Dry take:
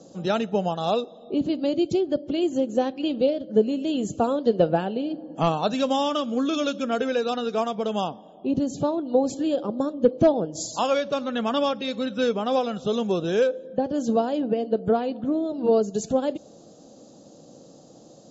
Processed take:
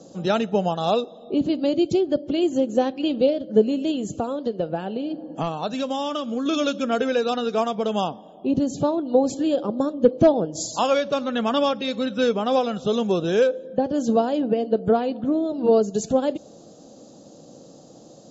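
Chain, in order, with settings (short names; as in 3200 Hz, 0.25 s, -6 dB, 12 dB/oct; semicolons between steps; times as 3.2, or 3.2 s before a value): 3.91–6.46 compressor 3:1, threshold -27 dBFS, peak gain reduction 10 dB; gain +2.5 dB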